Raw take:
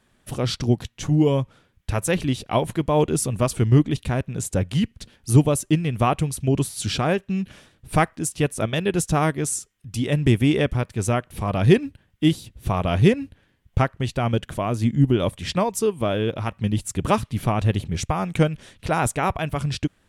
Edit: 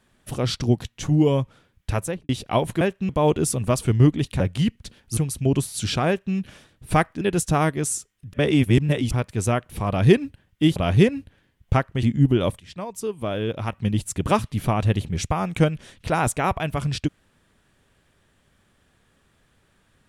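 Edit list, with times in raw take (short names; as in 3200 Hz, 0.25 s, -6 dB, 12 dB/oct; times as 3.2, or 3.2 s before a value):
1.94–2.29 studio fade out
4.12–4.56 cut
5.33–6.19 cut
7.09–7.37 copy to 2.81
8.23–8.82 cut
9.94–10.72 reverse
12.37–12.81 cut
14.08–14.82 cut
15.39–16.57 fade in, from -19 dB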